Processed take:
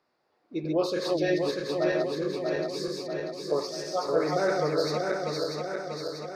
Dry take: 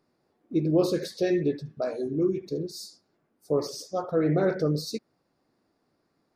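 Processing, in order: regenerating reverse delay 0.32 s, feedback 78%, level -2 dB; three-band isolator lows -14 dB, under 510 Hz, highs -13 dB, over 5600 Hz; gain +3 dB

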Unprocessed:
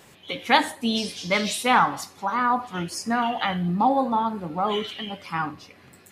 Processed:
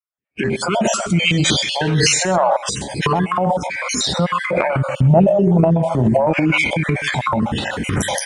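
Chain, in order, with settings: random spectral dropouts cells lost 47%; recorder AGC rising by 73 dB/s; HPF 120 Hz 6 dB/oct; tilt shelf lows +5.5 dB, about 920 Hz; transient shaper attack -5 dB, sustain +10 dB; speed mistake 45 rpm record played at 33 rpm; on a send: echo 0.129 s -18 dB; on the sum: gate -30 dBFS, range -48 dB; high shelf 7700 Hz +6.5 dB; gain +2.5 dB

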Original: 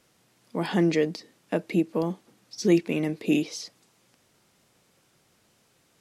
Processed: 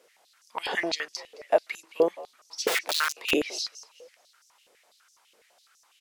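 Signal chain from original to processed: on a send: frequency-shifting echo 0.216 s, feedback 36%, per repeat +66 Hz, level -18.5 dB; 2.67–3.31 on the sum: wrapped overs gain 23.5 dB; stepped high-pass 12 Hz 470–5800 Hz

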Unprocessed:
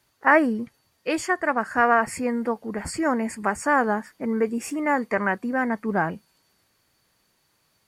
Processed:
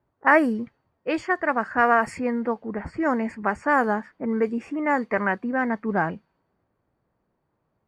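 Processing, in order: low-pass opened by the level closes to 840 Hz, open at -15 dBFS

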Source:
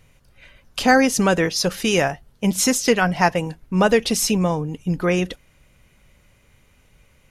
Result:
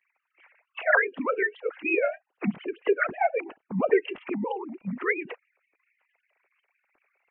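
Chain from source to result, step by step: sine-wave speech; formant-preserving pitch shift -3 st; dynamic EQ 350 Hz, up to -4 dB, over -28 dBFS, Q 1.8; gain -3.5 dB

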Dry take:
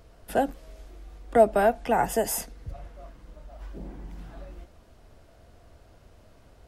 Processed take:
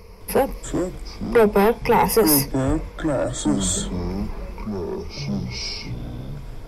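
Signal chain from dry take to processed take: ripple EQ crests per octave 0.85, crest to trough 16 dB; soft clip -18 dBFS, distortion -9 dB; echoes that change speed 0.209 s, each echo -7 st, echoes 3, each echo -6 dB; gain +8 dB

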